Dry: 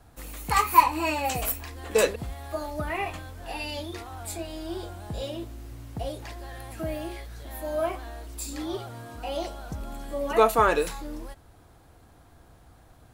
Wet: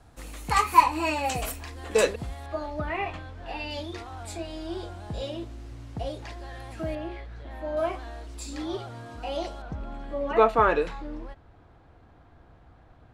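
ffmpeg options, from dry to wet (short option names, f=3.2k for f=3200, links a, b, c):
-af "asetnsamples=n=441:p=0,asendcmd='2.46 lowpass f 3800;3.71 lowpass f 6500;6.95 lowpass f 2700;7.77 lowpass f 6400;9.62 lowpass f 2800',lowpass=9.2k"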